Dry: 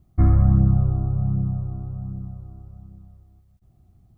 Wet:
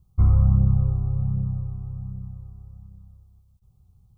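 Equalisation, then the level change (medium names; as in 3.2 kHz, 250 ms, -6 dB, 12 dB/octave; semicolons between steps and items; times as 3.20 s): dynamic bell 490 Hz, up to +5 dB, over -43 dBFS, Q 2; Butterworth band-stop 660 Hz, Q 2.4; static phaser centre 730 Hz, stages 4; 0.0 dB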